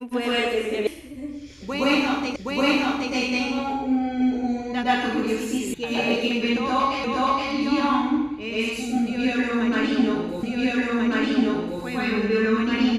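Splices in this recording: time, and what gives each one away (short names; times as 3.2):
0.87 sound cut off
2.36 repeat of the last 0.77 s
5.74 sound cut off
7.04 repeat of the last 0.47 s
10.43 repeat of the last 1.39 s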